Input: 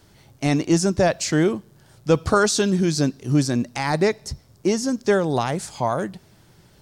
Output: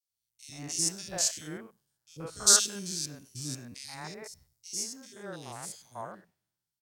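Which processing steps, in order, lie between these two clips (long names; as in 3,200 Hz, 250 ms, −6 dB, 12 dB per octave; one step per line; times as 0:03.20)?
spectrum averaged block by block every 100 ms
first-order pre-emphasis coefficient 0.9
three-band delay without the direct sound highs, lows, mids 90/130 ms, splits 420/2,300 Hz
multiband upward and downward expander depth 100%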